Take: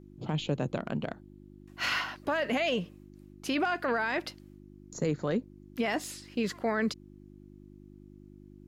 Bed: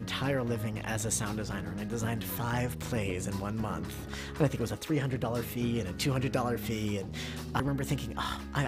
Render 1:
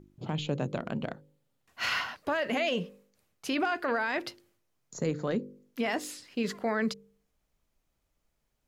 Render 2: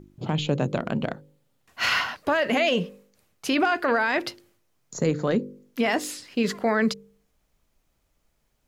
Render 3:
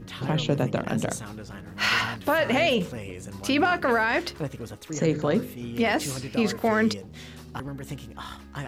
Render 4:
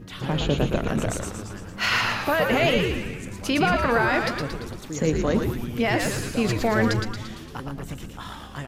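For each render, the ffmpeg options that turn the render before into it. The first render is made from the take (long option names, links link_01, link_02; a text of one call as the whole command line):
ffmpeg -i in.wav -af "bandreject=frequency=50:width_type=h:width=4,bandreject=frequency=100:width_type=h:width=4,bandreject=frequency=150:width_type=h:width=4,bandreject=frequency=200:width_type=h:width=4,bandreject=frequency=250:width_type=h:width=4,bandreject=frequency=300:width_type=h:width=4,bandreject=frequency=350:width_type=h:width=4,bandreject=frequency=400:width_type=h:width=4,bandreject=frequency=450:width_type=h:width=4,bandreject=frequency=500:width_type=h:width=4,bandreject=frequency=550:width_type=h:width=4" out.wav
ffmpeg -i in.wav -af "volume=7dB" out.wav
ffmpeg -i in.wav -i bed.wav -filter_complex "[1:a]volume=-4.5dB[link_01];[0:a][link_01]amix=inputs=2:normalize=0" out.wav
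ffmpeg -i in.wav -filter_complex "[0:a]asplit=9[link_01][link_02][link_03][link_04][link_05][link_06][link_07][link_08][link_09];[link_02]adelay=114,afreqshift=-110,volume=-4dB[link_10];[link_03]adelay=228,afreqshift=-220,volume=-8.9dB[link_11];[link_04]adelay=342,afreqshift=-330,volume=-13.8dB[link_12];[link_05]adelay=456,afreqshift=-440,volume=-18.6dB[link_13];[link_06]adelay=570,afreqshift=-550,volume=-23.5dB[link_14];[link_07]adelay=684,afreqshift=-660,volume=-28.4dB[link_15];[link_08]adelay=798,afreqshift=-770,volume=-33.3dB[link_16];[link_09]adelay=912,afreqshift=-880,volume=-38.2dB[link_17];[link_01][link_10][link_11][link_12][link_13][link_14][link_15][link_16][link_17]amix=inputs=9:normalize=0" out.wav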